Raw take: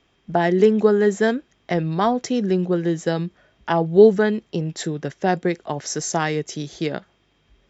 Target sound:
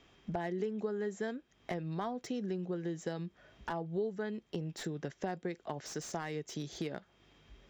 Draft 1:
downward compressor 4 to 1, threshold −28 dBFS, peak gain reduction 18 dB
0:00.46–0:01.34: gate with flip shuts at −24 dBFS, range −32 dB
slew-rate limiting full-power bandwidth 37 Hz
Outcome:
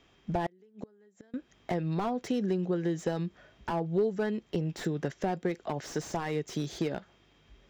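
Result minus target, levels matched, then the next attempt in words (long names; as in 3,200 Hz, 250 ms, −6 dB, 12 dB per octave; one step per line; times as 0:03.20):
downward compressor: peak gain reduction −7.5 dB
downward compressor 4 to 1, threshold −38 dBFS, peak gain reduction 25.5 dB
0:00.46–0:01.34: gate with flip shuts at −24 dBFS, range −32 dB
slew-rate limiting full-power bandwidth 37 Hz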